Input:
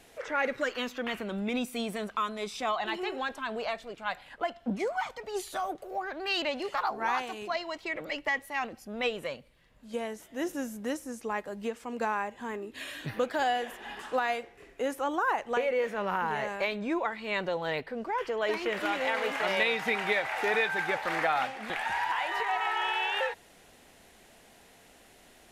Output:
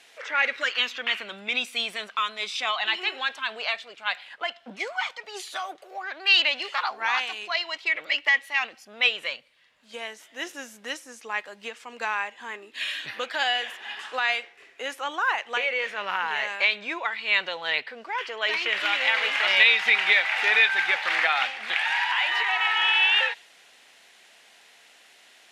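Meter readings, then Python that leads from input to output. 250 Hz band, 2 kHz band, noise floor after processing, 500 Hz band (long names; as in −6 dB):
−11.0 dB, +9.5 dB, −55 dBFS, −5.0 dB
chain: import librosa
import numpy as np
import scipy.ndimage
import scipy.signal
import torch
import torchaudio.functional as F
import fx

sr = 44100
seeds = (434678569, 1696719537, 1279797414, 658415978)

y = fx.bandpass_q(x, sr, hz=3100.0, q=0.71)
y = fx.dynamic_eq(y, sr, hz=2900.0, q=0.87, threshold_db=-47.0, ratio=4.0, max_db=6)
y = y * 10.0 ** (7.5 / 20.0)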